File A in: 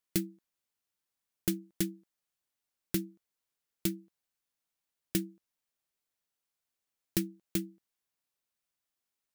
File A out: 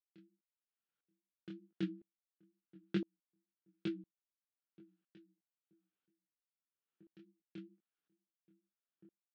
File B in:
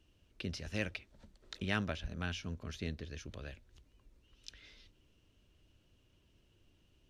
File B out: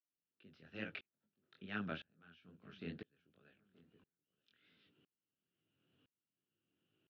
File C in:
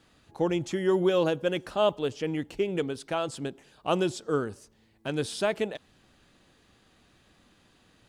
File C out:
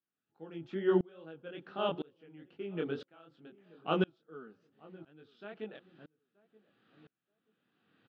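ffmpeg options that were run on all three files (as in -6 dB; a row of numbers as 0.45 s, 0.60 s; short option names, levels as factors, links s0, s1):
-filter_complex "[0:a]dynaudnorm=f=120:g=11:m=1.58,flanger=delay=18.5:depth=6.5:speed=2.3,highpass=f=140:w=0.5412,highpass=f=140:w=1.3066,equalizer=f=600:t=q:w=4:g=-6,equalizer=f=980:t=q:w=4:g=-7,equalizer=f=1400:t=q:w=4:g=5,equalizer=f=2100:t=q:w=4:g=-5,lowpass=f=3300:w=0.5412,lowpass=f=3300:w=1.3066,asplit=2[s0][s1];[s1]adelay=928,lowpass=f=970:p=1,volume=0.106,asplit=2[s2][s3];[s3]adelay=928,lowpass=f=970:p=1,volume=0.3[s4];[s2][s4]amix=inputs=2:normalize=0[s5];[s0][s5]amix=inputs=2:normalize=0,aeval=exprs='val(0)*pow(10,-33*if(lt(mod(-0.99*n/s,1),2*abs(-0.99)/1000),1-mod(-0.99*n/s,1)/(2*abs(-0.99)/1000),(mod(-0.99*n/s,1)-2*abs(-0.99)/1000)/(1-2*abs(-0.99)/1000))/20)':c=same"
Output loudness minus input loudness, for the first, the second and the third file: -8.5 LU, -6.5 LU, -7.5 LU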